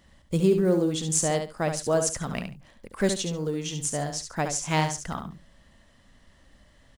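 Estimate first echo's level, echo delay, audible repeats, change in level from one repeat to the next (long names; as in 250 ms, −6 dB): −7.0 dB, 70 ms, 2, −14.0 dB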